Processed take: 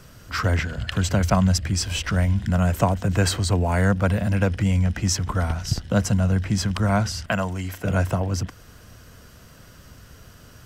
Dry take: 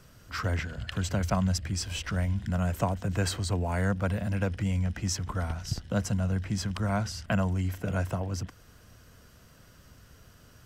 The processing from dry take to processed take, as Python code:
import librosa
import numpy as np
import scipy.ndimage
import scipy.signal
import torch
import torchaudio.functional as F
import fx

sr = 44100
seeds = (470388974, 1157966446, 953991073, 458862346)

y = fx.low_shelf(x, sr, hz=320.0, db=-10.0, at=(7.27, 7.85))
y = y * 10.0 ** (8.0 / 20.0)